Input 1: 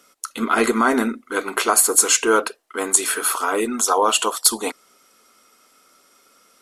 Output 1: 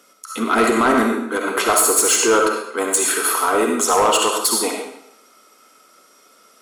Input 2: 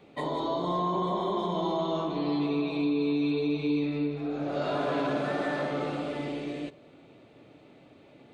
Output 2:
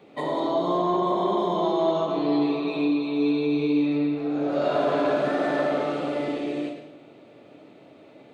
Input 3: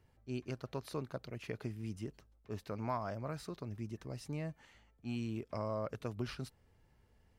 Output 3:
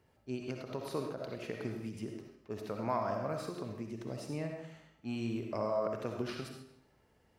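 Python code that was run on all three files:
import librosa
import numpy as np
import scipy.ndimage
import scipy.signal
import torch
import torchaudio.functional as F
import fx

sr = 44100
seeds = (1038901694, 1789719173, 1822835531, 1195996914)

y = fx.highpass(x, sr, hz=340.0, slope=6)
y = fx.tilt_shelf(y, sr, db=3.5, hz=750.0)
y = fx.rev_freeverb(y, sr, rt60_s=0.74, hf_ratio=0.95, predelay_ms=25, drr_db=2.5)
y = 10.0 ** (-13.0 / 20.0) * np.tanh(y / 10.0 ** (-13.0 / 20.0))
y = fx.end_taper(y, sr, db_per_s=140.0)
y = F.gain(torch.from_numpy(y), 4.5).numpy()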